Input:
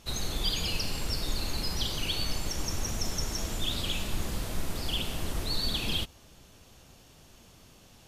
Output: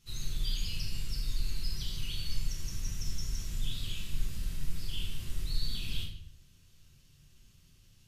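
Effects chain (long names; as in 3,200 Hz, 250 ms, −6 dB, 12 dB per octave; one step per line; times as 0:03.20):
guitar amp tone stack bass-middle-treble 6-0-2
convolution reverb, pre-delay 6 ms, DRR −4 dB
level +2.5 dB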